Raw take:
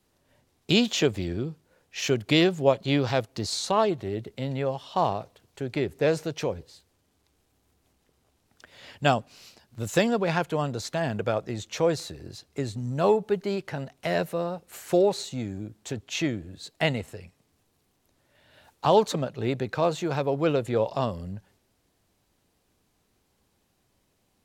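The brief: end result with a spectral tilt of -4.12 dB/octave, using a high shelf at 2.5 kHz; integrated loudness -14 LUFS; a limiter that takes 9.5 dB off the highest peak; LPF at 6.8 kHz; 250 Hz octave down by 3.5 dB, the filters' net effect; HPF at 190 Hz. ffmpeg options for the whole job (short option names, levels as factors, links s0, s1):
-af "highpass=190,lowpass=6800,equalizer=f=250:t=o:g=-3,highshelf=f=2500:g=-5,volume=7.5,alimiter=limit=1:level=0:latency=1"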